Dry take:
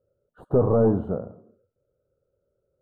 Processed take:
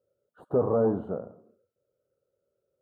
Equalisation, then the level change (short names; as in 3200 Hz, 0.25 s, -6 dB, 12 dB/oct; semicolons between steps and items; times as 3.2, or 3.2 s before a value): HPF 260 Hz 6 dB/oct; -2.5 dB